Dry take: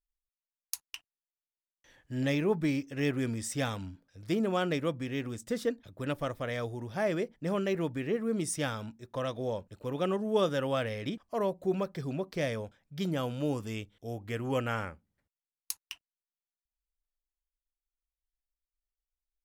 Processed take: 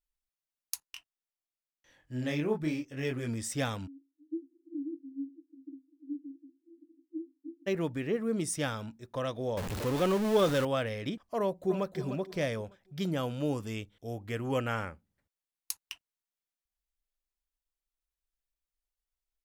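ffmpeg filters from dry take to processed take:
-filter_complex "[0:a]asplit=3[a][b][c];[a]afade=t=out:st=0.81:d=0.02[d];[b]flanger=delay=22.5:depth=5:speed=1,afade=t=in:st=0.81:d=0.02,afade=t=out:st=3.27:d=0.02[e];[c]afade=t=in:st=3.27:d=0.02[f];[d][e][f]amix=inputs=3:normalize=0,asplit=3[g][h][i];[g]afade=t=out:st=3.86:d=0.02[j];[h]asuperpass=centerf=300:order=20:qfactor=4.2,afade=t=in:st=3.86:d=0.02,afade=t=out:st=7.66:d=0.02[k];[i]afade=t=in:st=7.66:d=0.02[l];[j][k][l]amix=inputs=3:normalize=0,asettb=1/sr,asplit=3[m][n][o];[m]atrim=end=9.574[p];[n]atrim=start=9.57:end=10.65,asetpts=PTS-STARTPTS,afade=t=in:d=0.004:c=qsin,afade=t=out:st=1.076:d=0.004:c=qsin,aeval=exprs='val(0)+0.5*0.0299*sgn(val(0))':c=same[q];[o]atrim=start=10.646[r];[p][q]acrossfade=d=0.004:c1=hsin:c2=qsin[s];[s][r]acrossfade=d=0.004:c1=qsin:c2=hsin,asplit=2[t][u];[u]afade=t=in:st=11.39:d=0.01,afade=t=out:st=11.96:d=0.01,aecho=0:1:300|600|900|1200:0.316228|0.11068|0.0387379|0.0135583[v];[t][v]amix=inputs=2:normalize=0"

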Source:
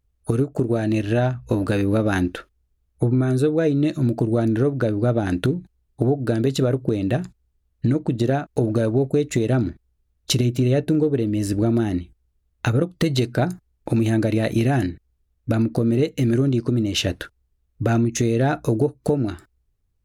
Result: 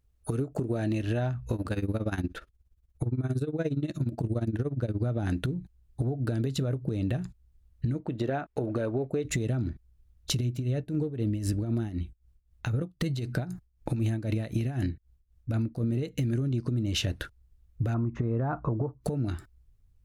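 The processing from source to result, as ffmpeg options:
-filter_complex "[0:a]asettb=1/sr,asplit=3[a][b][c];[a]atrim=end=1.554[d];[b]atrim=start=1.55:end=5.03,asetpts=PTS-STARTPTS,afade=t=in:d=0.004:c=qsin,afade=t=out:st=3.476:d=0.004:c=qsin,tremolo=f=17:d=0.87[e];[c]atrim=start=5.026[f];[d][e]acrossfade=d=0.004:c1=hsin:c2=qsin[g];[g][f]acrossfade=d=0.004:c1=qsin:c2=hsin,asettb=1/sr,asplit=3[h][i][j];[h]atrim=end=8.004[k];[i]atrim=start=8:end=9.25,asetpts=PTS-STARTPTS,afade=t=in:d=0.004:c=qsin,afade=t=out:st=1.246:d=0.004:c=qsin,bass=f=250:g=-13,treble=f=4k:g=-13[l];[j]atrim=start=9.246[m];[k][l]acrossfade=d=0.004:c1=hsin:c2=qsin[n];[n][m]acrossfade=d=0.004:c1=qsin:c2=hsin,asettb=1/sr,asplit=3[o][p][q];[o]atrim=end=10.514[r];[p]atrim=start=10.51:end=15.84,asetpts=PTS-STARTPTS,afade=t=in:d=0.004:c=qsin,afade=t=out:st=5.326:d=0.004:c=qsin,tremolo=f=3.9:d=0.79[s];[q]atrim=start=15.836[t];[r][s]acrossfade=d=0.004:c1=hsin:c2=qsin[u];[u][t]acrossfade=d=0.004:c1=qsin:c2=hsin,asettb=1/sr,asplit=3[v][w][x];[v]atrim=end=17.944[y];[w]atrim=start=17.94:end=19.01,asetpts=PTS-STARTPTS,afade=t=in:d=0.004:c=qsin,afade=t=out:st=1.066:d=0.004:c=qsin,lowpass=f=1.1k:t=q:w=4.3[z];[x]atrim=start=19.006[aa];[y][z]acrossfade=d=0.004:c1=hsin:c2=qsin[ab];[ab][aa]acrossfade=d=0.004:c1=qsin:c2=hsin,asubboost=boost=2:cutoff=210,alimiter=limit=-16dB:level=0:latency=1:release=490,acompressor=threshold=-25dB:ratio=6"

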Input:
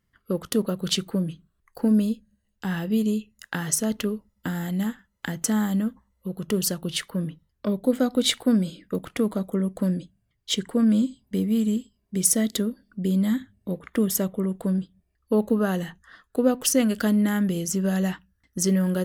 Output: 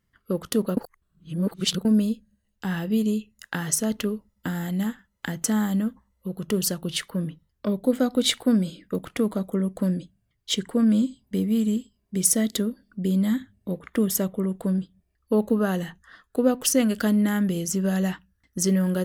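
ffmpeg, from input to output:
-filter_complex "[0:a]asplit=3[a][b][c];[a]atrim=end=0.772[d];[b]atrim=start=0.768:end=1.852,asetpts=PTS-STARTPTS,areverse[e];[c]atrim=start=1.848[f];[d][e]acrossfade=d=0.004:c1=hsin:c2=hsin[g];[g][f]acrossfade=d=0.004:c1=hsin:c2=hsin"

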